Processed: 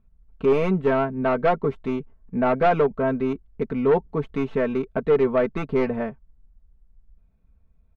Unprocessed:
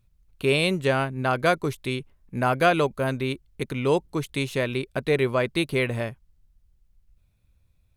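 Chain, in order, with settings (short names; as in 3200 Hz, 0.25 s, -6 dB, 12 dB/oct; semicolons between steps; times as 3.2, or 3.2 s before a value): tracing distortion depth 0.2 ms; LPF 1200 Hz 12 dB/oct; comb 4.5 ms, depth 77%; in parallel at -6 dB: sine folder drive 6 dB, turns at -8 dBFS; on the sum: gain -5.5 dB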